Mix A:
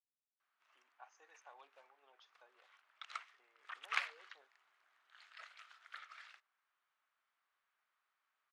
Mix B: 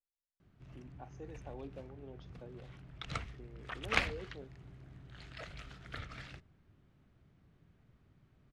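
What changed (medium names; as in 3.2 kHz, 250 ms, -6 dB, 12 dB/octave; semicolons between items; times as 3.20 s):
speech -6.0 dB; master: remove ladder high-pass 910 Hz, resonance 35%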